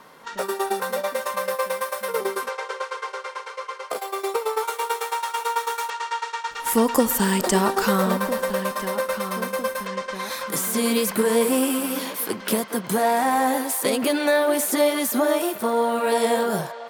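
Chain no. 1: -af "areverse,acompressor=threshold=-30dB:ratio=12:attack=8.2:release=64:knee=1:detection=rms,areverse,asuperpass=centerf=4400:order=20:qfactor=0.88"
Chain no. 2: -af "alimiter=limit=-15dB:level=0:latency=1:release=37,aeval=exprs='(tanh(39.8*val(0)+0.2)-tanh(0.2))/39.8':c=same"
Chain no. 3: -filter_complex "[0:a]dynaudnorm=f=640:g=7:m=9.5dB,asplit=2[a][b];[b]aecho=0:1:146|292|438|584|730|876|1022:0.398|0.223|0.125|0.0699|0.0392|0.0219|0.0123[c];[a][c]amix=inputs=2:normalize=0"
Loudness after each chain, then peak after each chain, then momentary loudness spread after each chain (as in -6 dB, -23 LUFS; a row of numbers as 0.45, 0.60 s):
-44.0, -34.0, -17.5 LUFS; -23.5, -30.5, -1.0 dBFS; 7, 3, 10 LU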